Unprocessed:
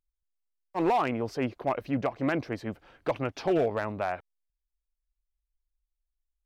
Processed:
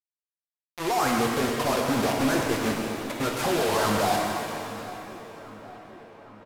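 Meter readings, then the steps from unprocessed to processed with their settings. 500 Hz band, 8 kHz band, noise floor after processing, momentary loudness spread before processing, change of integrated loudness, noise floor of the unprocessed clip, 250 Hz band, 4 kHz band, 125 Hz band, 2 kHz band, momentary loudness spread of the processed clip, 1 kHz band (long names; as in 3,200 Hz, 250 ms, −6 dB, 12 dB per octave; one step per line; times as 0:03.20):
+3.0 dB, can't be measured, below −85 dBFS, 10 LU, +4.5 dB, below −85 dBFS, +4.5 dB, +15.0 dB, +4.0 dB, +8.0 dB, 19 LU, +5.5 dB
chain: reverb reduction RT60 1.6 s
brickwall limiter −29 dBFS, peak gain reduction 10 dB
leveller curve on the samples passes 2
volume swells 253 ms
mid-hump overdrive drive 20 dB, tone 1,500 Hz, clips at −29 dBFS
bit-depth reduction 6 bits, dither none
on a send: feedback echo with a low-pass in the loop 809 ms, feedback 62%, low-pass 3,000 Hz, level −16 dB
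on the sum: downsampling to 32,000 Hz
reverb with rising layers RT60 2.4 s, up +7 semitones, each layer −8 dB, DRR −0.5 dB
level +6 dB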